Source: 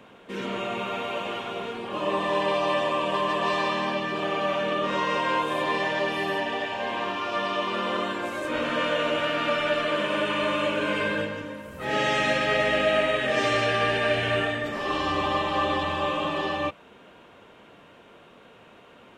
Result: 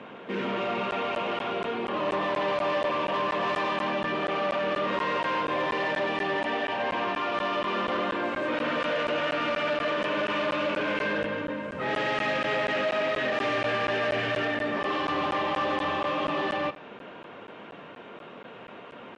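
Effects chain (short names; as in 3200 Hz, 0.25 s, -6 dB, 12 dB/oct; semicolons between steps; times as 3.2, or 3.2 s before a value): in parallel at -1 dB: compressor, threshold -35 dBFS, peak gain reduction 15.5 dB; on the sum: soft clip -26 dBFS, distortion -9 dB; BPF 140–3000 Hz; on a send: feedback echo 85 ms, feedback 56%, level -18 dB; on the sum: crackling interface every 0.24 s, samples 512, zero, from 0.91; gain +2.5 dB; MP3 56 kbps 22050 Hz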